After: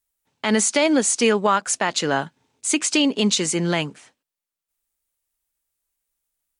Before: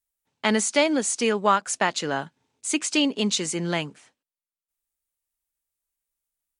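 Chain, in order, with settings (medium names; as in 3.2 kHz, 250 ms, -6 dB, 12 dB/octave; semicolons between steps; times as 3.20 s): peak limiter -13.5 dBFS, peak gain reduction 7 dB; trim +5.5 dB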